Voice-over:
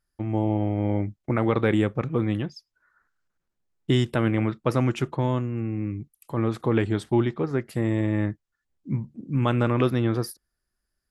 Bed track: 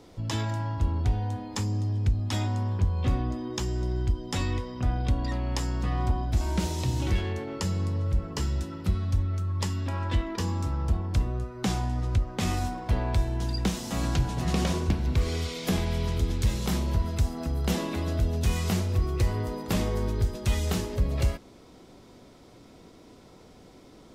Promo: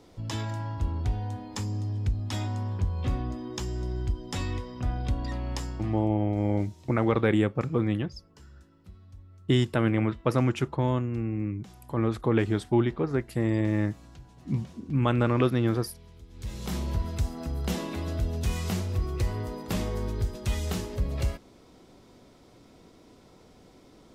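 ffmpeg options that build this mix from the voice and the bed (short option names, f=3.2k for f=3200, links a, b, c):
-filter_complex "[0:a]adelay=5600,volume=-1.5dB[a];[1:a]volume=17dB,afade=t=out:st=5.52:d=0.57:silence=0.1,afade=t=in:st=16.31:d=0.51:silence=0.1[b];[a][b]amix=inputs=2:normalize=0"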